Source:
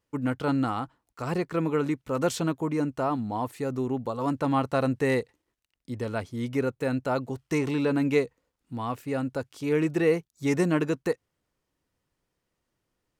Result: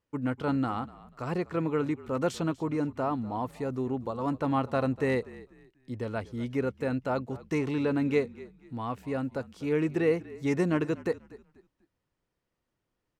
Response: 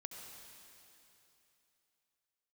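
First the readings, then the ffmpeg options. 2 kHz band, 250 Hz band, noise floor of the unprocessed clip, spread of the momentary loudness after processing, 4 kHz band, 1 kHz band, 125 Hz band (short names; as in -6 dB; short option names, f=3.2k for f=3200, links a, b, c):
-3.5 dB, -2.5 dB, -82 dBFS, 9 LU, -5.0 dB, -2.5 dB, -2.5 dB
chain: -filter_complex "[0:a]lowpass=f=4k:p=1,asplit=4[a][b][c][d];[b]adelay=244,afreqshift=-47,volume=-19dB[e];[c]adelay=488,afreqshift=-94,volume=-29.5dB[f];[d]adelay=732,afreqshift=-141,volume=-39.9dB[g];[a][e][f][g]amix=inputs=4:normalize=0,volume=-2.5dB"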